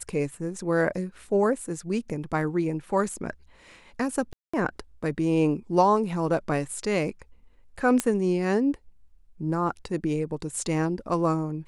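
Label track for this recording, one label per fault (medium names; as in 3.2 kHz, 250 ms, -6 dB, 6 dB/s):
4.330000	4.540000	dropout 205 ms
8.000000	8.000000	pop -9 dBFS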